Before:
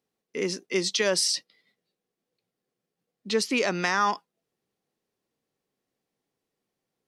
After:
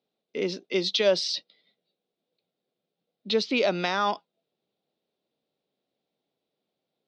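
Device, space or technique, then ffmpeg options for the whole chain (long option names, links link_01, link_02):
guitar cabinet: -af "highpass=100,equalizer=frequency=110:width_type=q:width=4:gain=-7,equalizer=frequency=620:width_type=q:width=4:gain=7,equalizer=frequency=1100:width_type=q:width=4:gain=-5,equalizer=frequency=1800:width_type=q:width=4:gain=-8,equalizer=frequency=3700:width_type=q:width=4:gain=8,lowpass=frequency=4600:width=0.5412,lowpass=frequency=4600:width=1.3066"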